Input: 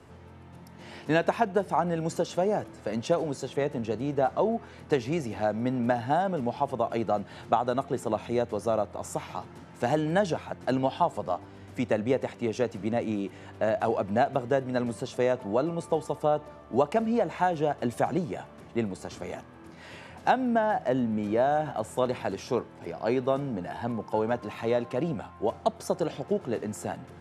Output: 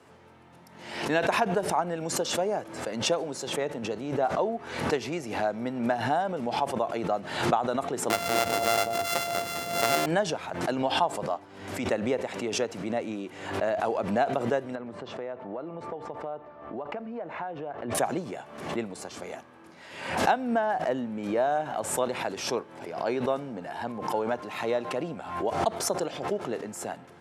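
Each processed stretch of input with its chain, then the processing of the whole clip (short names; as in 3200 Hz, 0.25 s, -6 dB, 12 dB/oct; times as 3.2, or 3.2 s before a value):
8.1–10.06 sample sorter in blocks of 64 samples + echo with dull and thin repeats by turns 0.201 s, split 890 Hz, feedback 63%, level -11 dB + fast leveller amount 50%
14.75–17.95 LPF 2000 Hz + compressor 5:1, threshold -30 dBFS
whole clip: HPF 370 Hz 6 dB/oct; backwards sustainer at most 67 dB/s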